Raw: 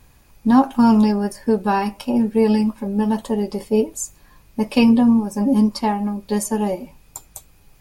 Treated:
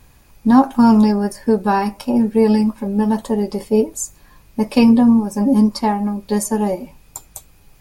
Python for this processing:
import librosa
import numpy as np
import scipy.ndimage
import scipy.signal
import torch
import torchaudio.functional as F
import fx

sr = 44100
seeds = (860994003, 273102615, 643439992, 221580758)

y = fx.dynamic_eq(x, sr, hz=2900.0, q=3.0, threshold_db=-49.0, ratio=4.0, max_db=-6)
y = y * librosa.db_to_amplitude(2.5)